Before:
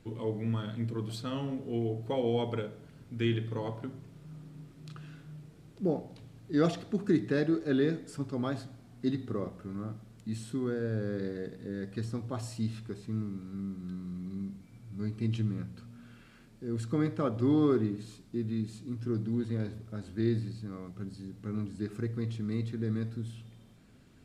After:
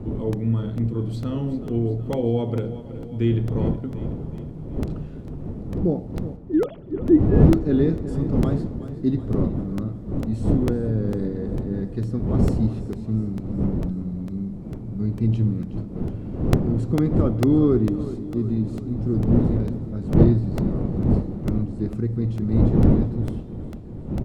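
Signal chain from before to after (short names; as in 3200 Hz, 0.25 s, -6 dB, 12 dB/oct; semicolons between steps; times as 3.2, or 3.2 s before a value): 6.36–7.46 sine-wave speech; wind noise 280 Hz -35 dBFS; tilt shelf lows +7.5 dB, about 650 Hz; notch 1600 Hz, Q 17; on a send: feedback echo 0.372 s, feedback 59%, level -13.5 dB; on the sum: crackling interface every 0.45 s, samples 64, repeat, from 0.33; gain +3.5 dB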